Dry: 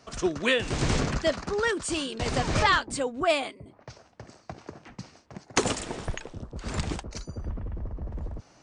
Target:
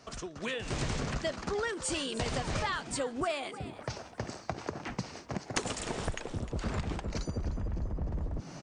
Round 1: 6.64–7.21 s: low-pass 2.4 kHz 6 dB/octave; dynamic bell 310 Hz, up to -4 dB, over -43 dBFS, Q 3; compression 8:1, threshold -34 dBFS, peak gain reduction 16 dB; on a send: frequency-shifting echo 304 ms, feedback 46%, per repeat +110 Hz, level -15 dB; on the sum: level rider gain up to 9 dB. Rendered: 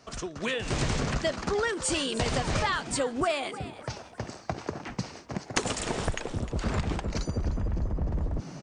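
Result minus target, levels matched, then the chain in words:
compression: peak gain reduction -5 dB
6.64–7.21 s: low-pass 2.4 kHz 6 dB/octave; dynamic bell 310 Hz, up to -4 dB, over -43 dBFS, Q 3; compression 8:1, threshold -40 dBFS, peak gain reduction 21.5 dB; on a send: frequency-shifting echo 304 ms, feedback 46%, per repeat +110 Hz, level -15 dB; on the sum: level rider gain up to 9 dB

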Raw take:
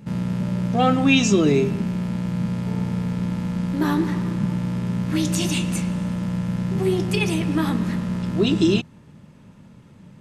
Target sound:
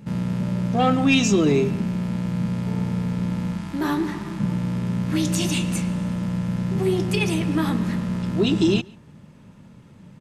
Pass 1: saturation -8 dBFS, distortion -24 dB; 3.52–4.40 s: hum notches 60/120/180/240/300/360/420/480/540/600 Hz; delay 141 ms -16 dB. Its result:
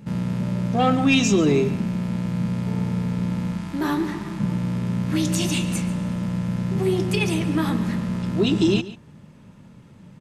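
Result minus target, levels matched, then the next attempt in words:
echo-to-direct +10 dB
saturation -8 dBFS, distortion -24 dB; 3.52–4.40 s: hum notches 60/120/180/240/300/360/420/480/540/600 Hz; delay 141 ms -26 dB

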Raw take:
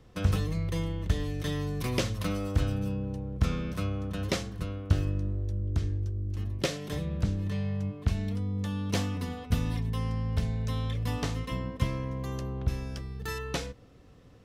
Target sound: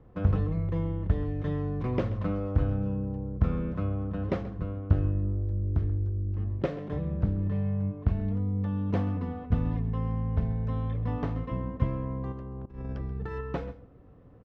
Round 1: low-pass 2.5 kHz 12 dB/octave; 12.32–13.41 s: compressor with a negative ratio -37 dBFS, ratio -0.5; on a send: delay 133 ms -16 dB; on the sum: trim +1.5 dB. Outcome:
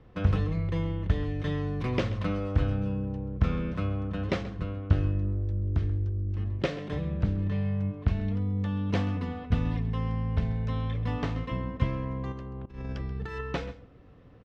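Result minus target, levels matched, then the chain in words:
2 kHz band +7.0 dB
low-pass 1.2 kHz 12 dB/octave; 12.32–13.41 s: compressor with a negative ratio -37 dBFS, ratio -0.5; on a send: delay 133 ms -16 dB; on the sum: trim +1.5 dB

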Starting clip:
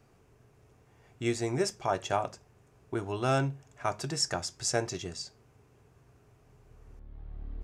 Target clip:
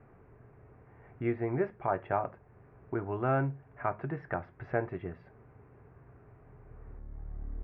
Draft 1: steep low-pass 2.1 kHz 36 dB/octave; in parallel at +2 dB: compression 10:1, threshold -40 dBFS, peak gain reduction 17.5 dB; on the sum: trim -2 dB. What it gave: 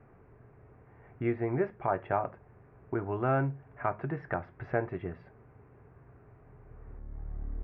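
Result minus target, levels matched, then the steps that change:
compression: peak gain reduction -6.5 dB
change: compression 10:1, threshold -47 dBFS, peak gain reduction 23.5 dB

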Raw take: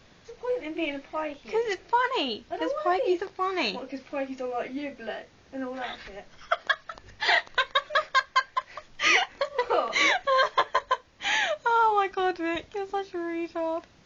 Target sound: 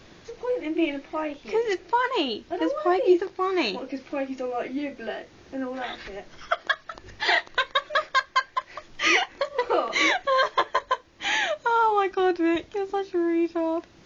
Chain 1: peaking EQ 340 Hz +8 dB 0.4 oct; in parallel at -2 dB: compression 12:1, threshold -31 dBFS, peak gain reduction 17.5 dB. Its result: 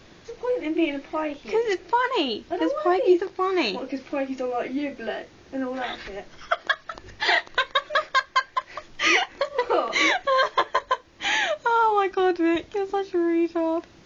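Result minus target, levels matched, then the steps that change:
compression: peak gain reduction -10 dB
change: compression 12:1, threshold -42 dBFS, peak gain reduction 28 dB

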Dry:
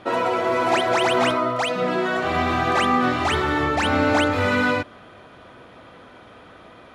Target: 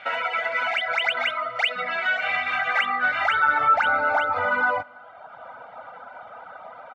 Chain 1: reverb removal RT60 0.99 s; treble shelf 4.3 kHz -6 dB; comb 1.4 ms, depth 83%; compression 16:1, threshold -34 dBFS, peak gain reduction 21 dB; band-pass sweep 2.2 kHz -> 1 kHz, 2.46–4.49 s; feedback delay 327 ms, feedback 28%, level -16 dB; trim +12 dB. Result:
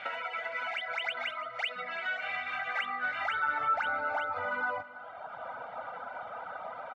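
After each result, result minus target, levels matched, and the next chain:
compression: peak gain reduction +11 dB; echo-to-direct +10.5 dB
reverb removal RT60 0.99 s; treble shelf 4.3 kHz -6 dB; comb 1.4 ms, depth 83%; compression 16:1, threshold -22.5 dBFS, peak gain reduction 10.5 dB; band-pass sweep 2.2 kHz -> 1 kHz, 2.46–4.49 s; feedback delay 327 ms, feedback 28%, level -16 dB; trim +12 dB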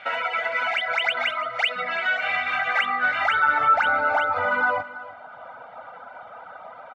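echo-to-direct +10.5 dB
reverb removal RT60 0.99 s; treble shelf 4.3 kHz -6 dB; comb 1.4 ms, depth 83%; compression 16:1, threshold -22.5 dBFS, peak gain reduction 10.5 dB; band-pass sweep 2.2 kHz -> 1 kHz, 2.46–4.49 s; feedback delay 327 ms, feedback 28%, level -26.5 dB; trim +12 dB

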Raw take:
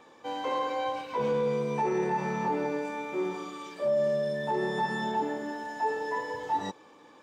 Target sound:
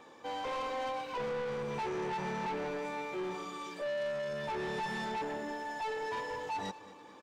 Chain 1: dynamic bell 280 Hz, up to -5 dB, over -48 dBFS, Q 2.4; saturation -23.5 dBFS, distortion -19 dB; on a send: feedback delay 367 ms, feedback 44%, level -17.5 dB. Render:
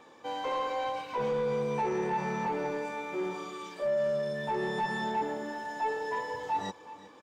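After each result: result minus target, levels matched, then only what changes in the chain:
echo 145 ms late; saturation: distortion -11 dB
change: feedback delay 222 ms, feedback 44%, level -17.5 dB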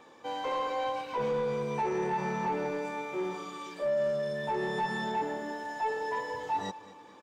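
saturation: distortion -11 dB
change: saturation -33.5 dBFS, distortion -8 dB

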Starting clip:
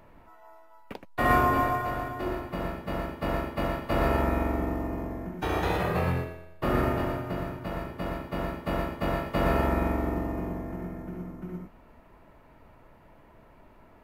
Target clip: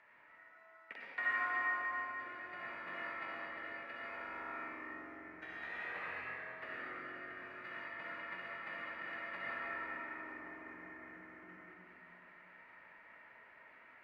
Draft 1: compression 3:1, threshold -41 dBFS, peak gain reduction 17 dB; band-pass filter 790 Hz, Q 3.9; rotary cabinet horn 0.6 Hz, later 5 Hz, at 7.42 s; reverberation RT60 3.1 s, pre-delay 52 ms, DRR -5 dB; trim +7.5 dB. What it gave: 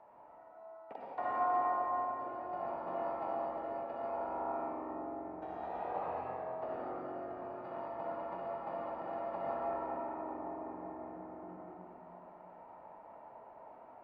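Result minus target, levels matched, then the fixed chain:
2 kHz band -17.0 dB
compression 3:1, threshold -41 dBFS, peak gain reduction 17 dB; band-pass filter 1.9 kHz, Q 3.9; rotary cabinet horn 0.6 Hz, later 5 Hz, at 7.42 s; reverberation RT60 3.1 s, pre-delay 52 ms, DRR -5 dB; trim +7.5 dB

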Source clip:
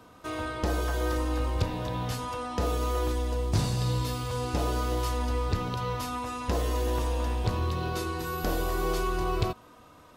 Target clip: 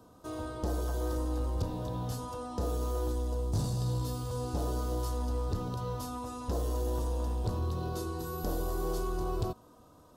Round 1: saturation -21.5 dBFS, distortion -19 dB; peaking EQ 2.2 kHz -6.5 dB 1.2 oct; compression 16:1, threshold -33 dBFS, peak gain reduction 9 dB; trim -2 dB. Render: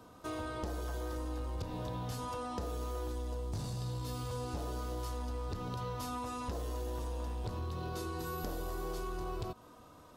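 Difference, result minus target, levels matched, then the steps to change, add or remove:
compression: peak gain reduction +9 dB; 2 kHz band +6.5 dB
change: peaking EQ 2.2 kHz -17.5 dB 1.2 oct; remove: compression 16:1, threshold -33 dBFS, peak gain reduction 9 dB

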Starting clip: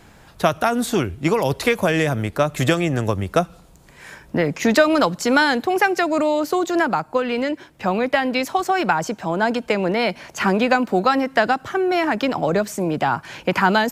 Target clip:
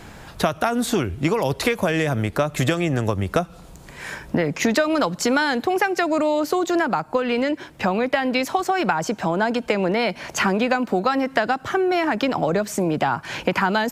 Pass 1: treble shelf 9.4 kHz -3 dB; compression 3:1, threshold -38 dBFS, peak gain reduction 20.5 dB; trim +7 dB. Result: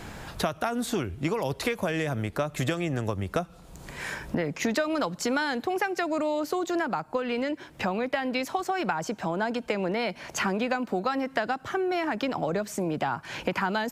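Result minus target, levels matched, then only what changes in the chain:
compression: peak gain reduction +7.5 dB
change: compression 3:1, threshold -27 dBFS, peak gain reduction 13.5 dB

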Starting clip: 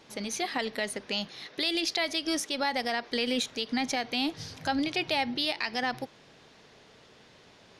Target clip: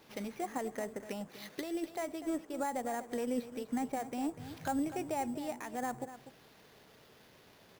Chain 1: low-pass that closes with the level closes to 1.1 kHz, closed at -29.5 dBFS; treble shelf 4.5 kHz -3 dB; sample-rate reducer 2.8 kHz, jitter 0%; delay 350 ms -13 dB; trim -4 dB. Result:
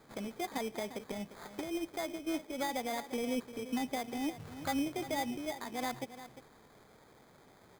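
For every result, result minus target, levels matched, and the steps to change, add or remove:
echo 104 ms late; sample-rate reducer: distortion +8 dB
change: delay 246 ms -13 dB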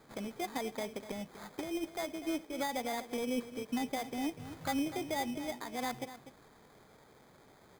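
sample-rate reducer: distortion +8 dB
change: sample-rate reducer 8.2 kHz, jitter 0%

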